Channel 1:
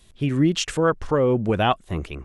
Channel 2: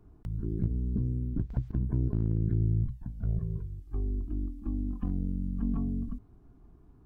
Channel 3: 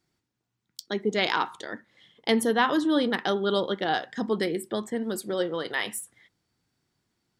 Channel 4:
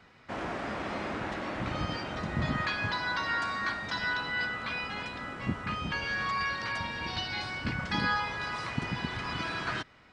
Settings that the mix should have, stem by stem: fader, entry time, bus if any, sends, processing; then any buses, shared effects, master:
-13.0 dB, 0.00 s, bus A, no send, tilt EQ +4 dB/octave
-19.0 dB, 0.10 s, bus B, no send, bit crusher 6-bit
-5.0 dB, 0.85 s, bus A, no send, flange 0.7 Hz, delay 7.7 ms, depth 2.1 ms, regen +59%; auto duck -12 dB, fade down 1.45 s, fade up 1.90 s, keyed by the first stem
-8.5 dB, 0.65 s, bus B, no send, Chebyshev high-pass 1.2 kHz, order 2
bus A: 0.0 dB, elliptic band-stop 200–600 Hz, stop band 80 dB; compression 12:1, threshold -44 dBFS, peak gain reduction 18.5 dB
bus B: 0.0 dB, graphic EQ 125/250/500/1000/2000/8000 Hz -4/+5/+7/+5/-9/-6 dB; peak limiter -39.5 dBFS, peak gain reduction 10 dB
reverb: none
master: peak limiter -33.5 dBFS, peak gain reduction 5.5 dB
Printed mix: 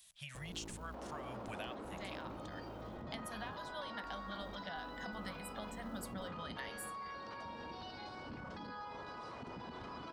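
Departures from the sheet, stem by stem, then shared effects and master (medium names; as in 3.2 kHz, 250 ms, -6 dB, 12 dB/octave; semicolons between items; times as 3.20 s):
stem 3: missing flange 0.7 Hz, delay 7.7 ms, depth 2.1 ms, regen +59%; stem 4: missing Chebyshev high-pass 1.2 kHz, order 2; master: missing peak limiter -33.5 dBFS, peak gain reduction 5.5 dB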